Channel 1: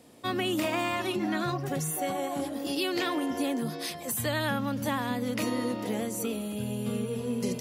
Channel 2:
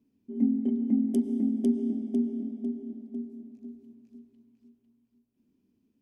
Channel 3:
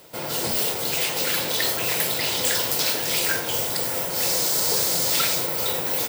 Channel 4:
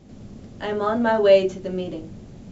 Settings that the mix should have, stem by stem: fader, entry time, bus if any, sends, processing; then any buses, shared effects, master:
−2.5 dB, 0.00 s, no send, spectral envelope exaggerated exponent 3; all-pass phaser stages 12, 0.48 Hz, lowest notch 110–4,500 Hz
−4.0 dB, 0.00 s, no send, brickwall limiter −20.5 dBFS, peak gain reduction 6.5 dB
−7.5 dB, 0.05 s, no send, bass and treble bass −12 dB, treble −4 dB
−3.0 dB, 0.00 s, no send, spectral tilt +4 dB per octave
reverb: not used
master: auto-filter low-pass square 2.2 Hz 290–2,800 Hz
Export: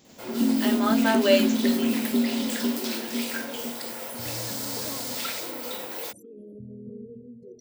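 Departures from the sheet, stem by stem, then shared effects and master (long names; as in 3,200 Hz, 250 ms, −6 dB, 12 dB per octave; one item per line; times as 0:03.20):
stem 1 −2.5 dB → −10.0 dB
stem 2 −4.0 dB → +5.0 dB
master: missing auto-filter low-pass square 2.2 Hz 290–2,800 Hz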